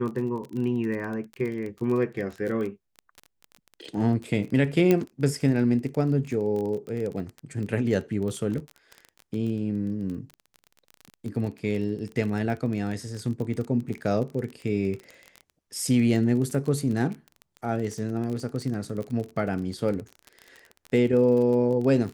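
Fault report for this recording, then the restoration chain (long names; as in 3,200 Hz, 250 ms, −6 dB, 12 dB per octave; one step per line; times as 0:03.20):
surface crackle 25 per second −31 dBFS
0:04.91: click −9 dBFS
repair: click removal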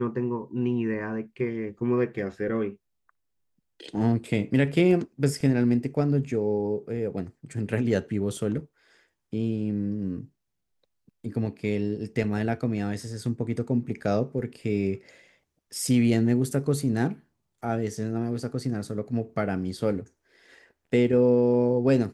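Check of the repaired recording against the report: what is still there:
0:04.91: click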